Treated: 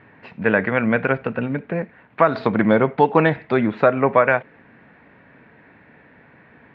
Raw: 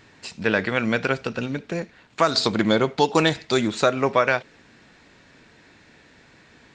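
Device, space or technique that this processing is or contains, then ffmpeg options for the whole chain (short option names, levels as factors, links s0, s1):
bass cabinet: -af "highpass=79,equalizer=f=88:t=q:w=4:g=-4,equalizer=f=350:t=q:w=4:g=-5,equalizer=f=1300:t=q:w=4:g=-3,lowpass=f=2100:w=0.5412,lowpass=f=2100:w=1.3066,volume=1.78"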